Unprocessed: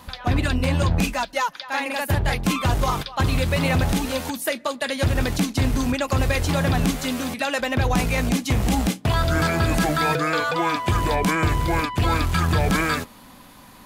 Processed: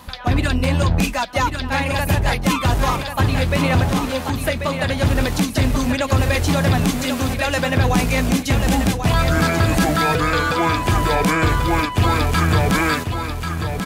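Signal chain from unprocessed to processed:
0:02.96–0:05.06: high-shelf EQ 4,700 Hz −6.5 dB
repeating echo 1,088 ms, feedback 28%, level −7 dB
level +3 dB

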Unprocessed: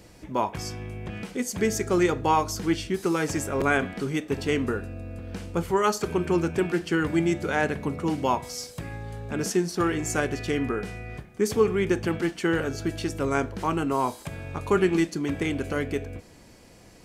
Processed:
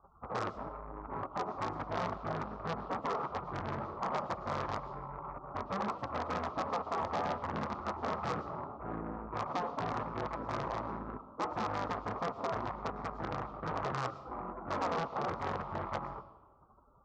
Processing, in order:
spectral envelope flattened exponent 0.6
in parallel at +1.5 dB: speech leveller within 5 dB 0.5 s
on the sum: high-pass filter 490 Hz 6 dB per octave
gate on every frequency bin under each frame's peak −15 dB weak
Butterworth low-pass 1,300 Hz 96 dB per octave
brickwall limiter −29.5 dBFS, peak gain reduction 8.5 dB
harmonic generator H 3 −21 dB, 5 −15 dB, 7 −24 dB, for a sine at −29.5 dBFS
comb and all-pass reverb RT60 1.1 s, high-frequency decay 0.7×, pre-delay 70 ms, DRR 16.5 dB
saturating transformer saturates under 1,100 Hz
level +6.5 dB

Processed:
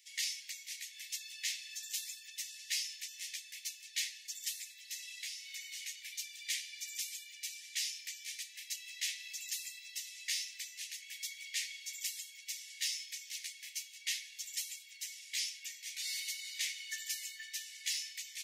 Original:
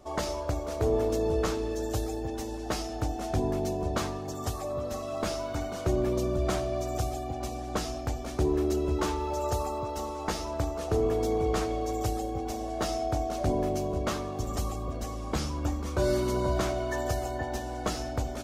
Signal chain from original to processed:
Butterworth high-pass 1,900 Hz 96 dB per octave
0:05.10–0:05.82: downward compressor 6 to 1, threshold −44 dBFS, peak gain reduction 8 dB
level +3.5 dB

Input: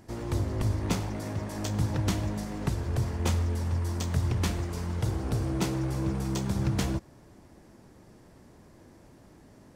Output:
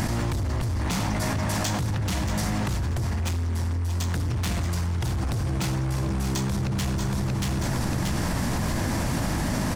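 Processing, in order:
parametric band 400 Hz −11.5 dB 1 octave
hum removal 51.72 Hz, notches 30
soft clipping −31 dBFS, distortion −10 dB
repeating echo 632 ms, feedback 27%, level −11.5 dB
envelope flattener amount 100%
level +6 dB

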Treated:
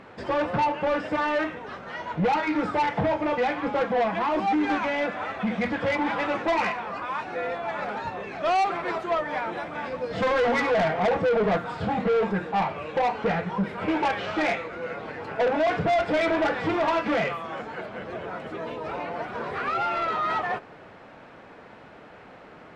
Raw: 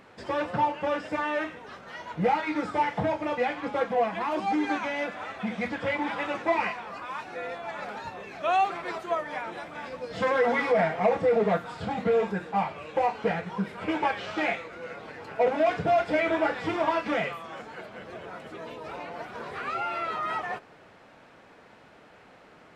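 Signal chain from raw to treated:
low-pass filter 2,500 Hz 6 dB per octave
soft clipping −26 dBFS, distortion −9 dB
level +7 dB

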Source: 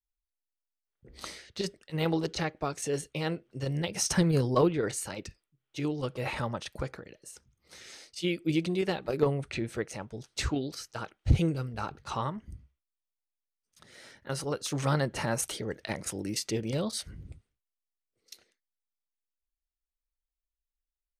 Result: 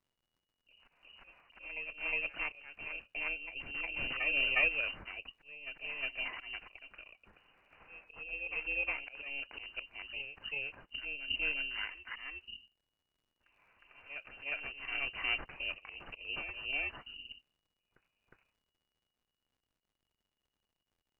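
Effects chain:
samples in bit-reversed order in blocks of 16 samples
dynamic equaliser 110 Hz, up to +8 dB, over −53 dBFS, Q 5.4
voice inversion scrambler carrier 2,900 Hz
volume swells 243 ms
surface crackle 120 per second −62 dBFS
spectral tilt −2.5 dB per octave
backwards echo 360 ms −7 dB
level −2.5 dB

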